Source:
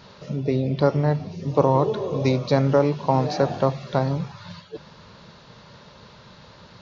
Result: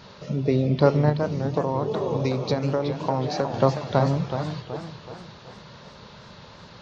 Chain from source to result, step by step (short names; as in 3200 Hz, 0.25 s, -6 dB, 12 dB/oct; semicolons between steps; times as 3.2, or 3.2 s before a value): 1.09–3.54 compressor, threshold -22 dBFS, peak gain reduction 10 dB; warbling echo 0.37 s, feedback 45%, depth 182 cents, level -8 dB; gain +1 dB